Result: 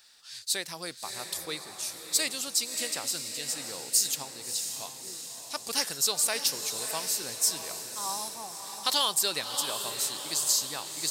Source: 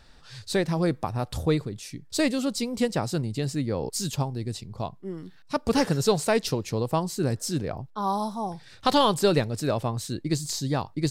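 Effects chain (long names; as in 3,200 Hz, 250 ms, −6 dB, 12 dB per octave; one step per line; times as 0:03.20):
first difference
feedback delay with all-pass diffusion 642 ms, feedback 52%, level −7.5 dB
level +8 dB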